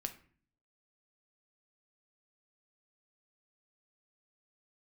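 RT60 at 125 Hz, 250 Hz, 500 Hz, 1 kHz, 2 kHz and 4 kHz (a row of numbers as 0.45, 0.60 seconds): 0.80, 0.75, 0.50, 0.45, 0.45, 0.35 seconds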